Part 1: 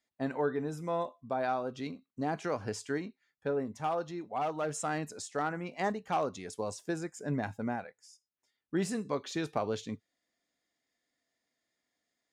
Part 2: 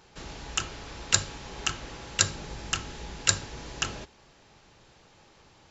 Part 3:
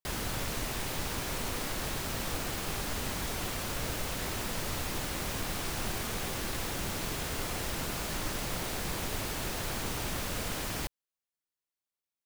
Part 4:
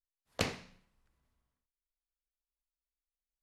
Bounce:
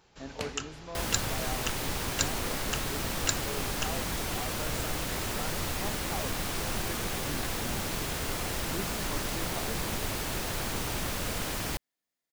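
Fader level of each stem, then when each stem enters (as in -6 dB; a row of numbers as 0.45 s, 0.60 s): -9.0 dB, -6.5 dB, +2.0 dB, -4.5 dB; 0.00 s, 0.00 s, 0.90 s, 0.00 s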